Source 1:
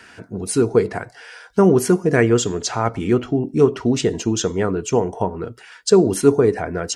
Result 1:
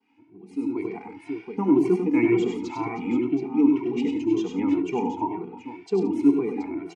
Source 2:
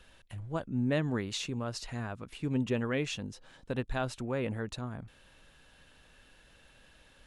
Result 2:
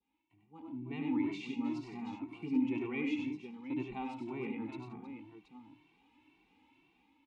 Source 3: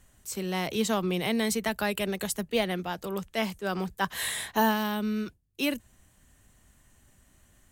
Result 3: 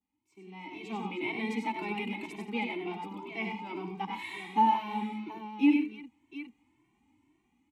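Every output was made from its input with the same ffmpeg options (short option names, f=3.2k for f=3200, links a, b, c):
-filter_complex "[0:a]asplit=3[a][b][c];[a]bandpass=f=300:t=q:w=8,volume=0dB[d];[b]bandpass=f=870:t=q:w=8,volume=-6dB[e];[c]bandpass=f=2.24k:t=q:w=8,volume=-9dB[f];[d][e][f]amix=inputs=3:normalize=0,aecho=1:1:72|97|130|173|315|727:0.251|0.596|0.2|0.141|0.178|0.299,adynamicequalizer=threshold=0.00126:dfrequency=2300:dqfactor=1.5:tfrequency=2300:tqfactor=1.5:attack=5:release=100:ratio=0.375:range=2:mode=boostabove:tftype=bell,dynaudnorm=f=100:g=17:m=15dB,asplit=2[g][h];[h]adelay=2.1,afreqshift=2[i];[g][i]amix=inputs=2:normalize=1,volume=-5dB"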